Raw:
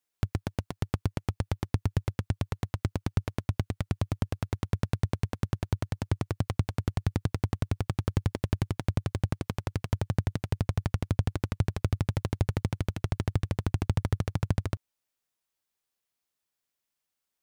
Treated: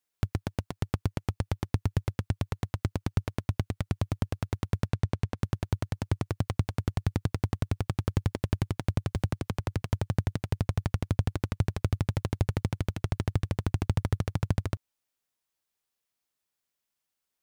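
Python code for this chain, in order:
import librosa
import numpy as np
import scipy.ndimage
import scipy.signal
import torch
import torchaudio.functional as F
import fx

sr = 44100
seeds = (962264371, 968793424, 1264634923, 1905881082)

y = fx.quant_float(x, sr, bits=6)
y = fx.high_shelf(y, sr, hz=8900.0, db=-9.5, at=(4.88, 5.38))
y = fx.band_squash(y, sr, depth_pct=70, at=(9.15, 9.82))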